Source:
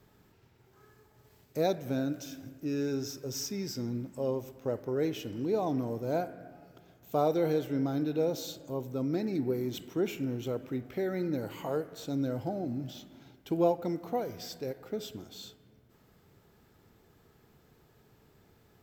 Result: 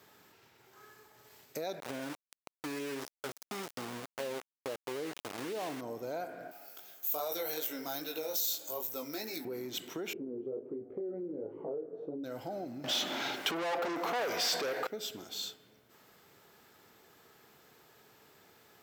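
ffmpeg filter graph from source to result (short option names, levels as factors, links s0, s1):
-filter_complex "[0:a]asettb=1/sr,asplit=3[s0][s1][s2];[s0]atrim=end=1.804[s3];[s1]atrim=start=1.8:end=5.81,asetpts=PTS-STARTPTS,afade=t=in:d=0.004:c=qsin,afade=t=out:st=4.006:d=0.004:c=qsin,agate=range=0.0224:threshold=0.00631:ratio=3:release=100:detection=peak,lowpass=f=1500:p=1,aeval=exprs='val(0)*gte(abs(val(0)),0.0158)':c=same[s4];[s2]atrim=start=5.806[s5];[s3][s4]acrossfade=d=0.004:c1=hsin:c2=qsin[s6];[s6][s5]acrossfade=d=0.004:c1=qsin:c2=hsin,asettb=1/sr,asplit=3[s7][s8][s9];[s7]atrim=end=6.514[s10];[s8]atrim=start=6.51:end=9.45,asetpts=PTS-STARTPTS,afade=t=in:d=0.004:c=qsin,afade=t=out:st=2.936:d=0.004:c=qsin,flanger=delay=17.5:depth=3.4:speed=2.5,aemphasis=mode=production:type=riaa[s11];[s9]atrim=start=9.446[s12];[s10][s11]acrossfade=d=0.004:c1=hsin:c2=qsin[s13];[s13][s12]acrossfade=d=0.004:c1=qsin:c2=hsin,asettb=1/sr,asplit=3[s14][s15][s16];[s14]atrim=end=10.134[s17];[s15]atrim=start=10.13:end=12.24,asetpts=PTS-STARTPTS,afade=t=in:d=0.004:c=qsin,afade=t=out:st=2.106:d=0.004:c=qsin,flanger=delay=18:depth=4.9:speed=1.4,lowpass=f=420:t=q:w=3.9[s18];[s16]atrim=start=12.236[s19];[s17][s18]acrossfade=d=0.004:c1=hsin:c2=qsin[s20];[s20][s19]acrossfade=d=0.004:c1=qsin:c2=hsin,asettb=1/sr,asplit=3[s21][s22][s23];[s21]atrim=end=12.844[s24];[s22]atrim=start=12.84:end=14.87,asetpts=PTS-STARTPTS,afade=t=in:d=0.004:c=qsin,afade=t=out:st=2.026:d=0.004:c=qsin,asplit=2[s25][s26];[s26]highpass=f=720:p=1,volume=56.2,asoftclip=type=tanh:threshold=0.2[s27];[s25][s27]amix=inputs=2:normalize=0,lowpass=f=2900:p=1,volume=0.501,aeval=exprs='val(0)*gte(abs(val(0)),0.00224)':c=same[s28];[s23]atrim=start=14.866[s29];[s24][s28]acrossfade=d=0.004:c1=hsin:c2=qsin[s30];[s30][s29]acrossfade=d=0.004:c1=qsin:c2=hsin,alimiter=level_in=1.19:limit=0.0631:level=0:latency=1:release=47,volume=0.841,acompressor=threshold=0.0126:ratio=3,highpass=f=860:p=1,volume=2.51"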